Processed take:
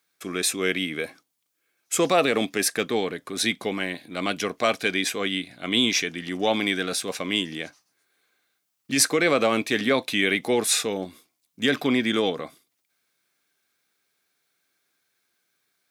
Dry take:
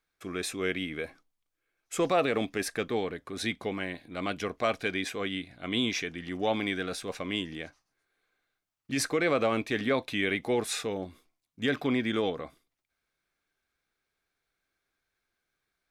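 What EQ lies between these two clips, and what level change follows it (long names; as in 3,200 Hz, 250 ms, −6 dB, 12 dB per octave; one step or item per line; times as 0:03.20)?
Chebyshev high-pass filter 170 Hz, order 2
parametric band 4,000 Hz +2.5 dB 2 octaves
high-shelf EQ 5,900 Hz +11 dB
+5.5 dB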